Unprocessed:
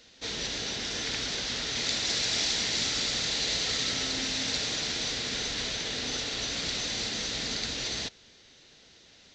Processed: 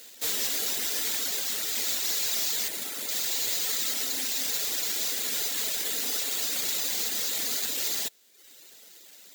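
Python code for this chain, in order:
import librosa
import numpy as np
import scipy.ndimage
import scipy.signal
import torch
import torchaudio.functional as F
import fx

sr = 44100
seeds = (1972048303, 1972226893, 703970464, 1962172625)

y = scipy.signal.sosfilt(scipy.signal.butter(2, 300.0, 'highpass', fs=sr, output='sos'), x)
y = fx.dereverb_blind(y, sr, rt60_s=0.82)
y = fx.lowpass(y, sr, hz=1700.0, slope=6, at=(2.68, 3.09))
y = fx.rider(y, sr, range_db=10, speed_s=2.0)
y = np.clip(y, -10.0 ** (-30.5 / 20.0), 10.0 ** (-30.5 / 20.0))
y = (np.kron(y[::4], np.eye(4)[0]) * 4)[:len(y)]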